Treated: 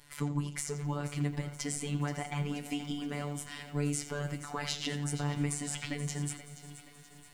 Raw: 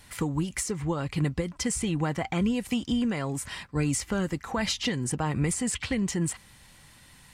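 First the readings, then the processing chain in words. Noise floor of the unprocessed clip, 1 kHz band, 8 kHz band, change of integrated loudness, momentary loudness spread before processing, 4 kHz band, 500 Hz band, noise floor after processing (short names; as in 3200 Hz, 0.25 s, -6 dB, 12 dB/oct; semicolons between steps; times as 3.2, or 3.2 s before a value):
-55 dBFS, -6.0 dB, -6.0 dB, -6.5 dB, 4 LU, -6.0 dB, -7.5 dB, -55 dBFS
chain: flange 0.9 Hz, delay 8.6 ms, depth 8 ms, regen +66%; on a send: analogue delay 86 ms, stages 4096, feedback 35%, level -12 dB; on the sum: robotiser 145 Hz; lo-fi delay 0.477 s, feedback 55%, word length 9-bit, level -13 dB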